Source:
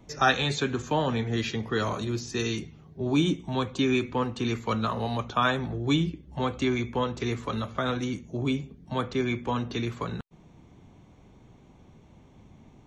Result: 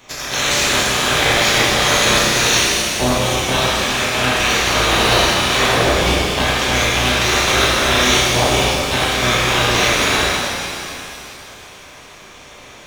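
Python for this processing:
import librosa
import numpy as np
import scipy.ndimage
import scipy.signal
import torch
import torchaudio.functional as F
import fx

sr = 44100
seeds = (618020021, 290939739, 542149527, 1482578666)

p1 = fx.spec_clip(x, sr, under_db=30)
p2 = fx.over_compress(p1, sr, threshold_db=-30.0, ratio=-1.0)
p3 = fx.fuzz(p2, sr, gain_db=30.0, gate_db=-31.0)
p4 = p2 + (p3 * 10.0 ** (-11.0 / 20.0))
p5 = fx.room_flutter(p4, sr, wall_m=5.6, rt60_s=0.27)
p6 = fx.rev_shimmer(p5, sr, seeds[0], rt60_s=2.7, semitones=7, shimmer_db=-8, drr_db=-6.5)
y = p6 * 10.0 ** (2.5 / 20.0)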